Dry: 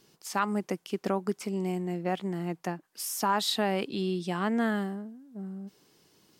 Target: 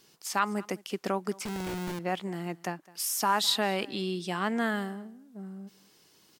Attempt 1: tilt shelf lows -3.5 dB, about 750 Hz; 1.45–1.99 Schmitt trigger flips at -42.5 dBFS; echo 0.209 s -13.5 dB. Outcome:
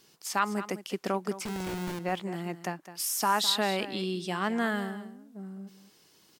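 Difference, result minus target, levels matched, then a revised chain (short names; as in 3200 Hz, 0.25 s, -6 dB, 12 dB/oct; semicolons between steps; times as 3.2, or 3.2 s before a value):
echo-to-direct +9 dB
tilt shelf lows -3.5 dB, about 750 Hz; 1.45–1.99 Schmitt trigger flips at -42.5 dBFS; echo 0.209 s -22.5 dB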